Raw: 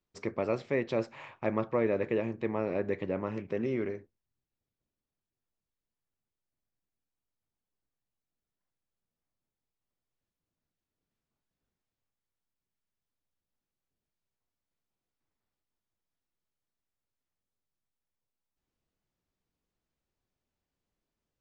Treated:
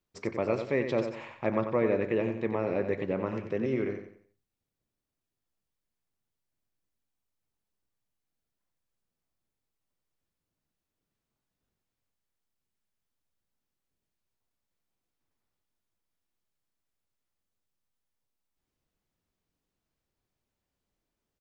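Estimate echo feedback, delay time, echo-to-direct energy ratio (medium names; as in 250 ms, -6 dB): 35%, 91 ms, -7.5 dB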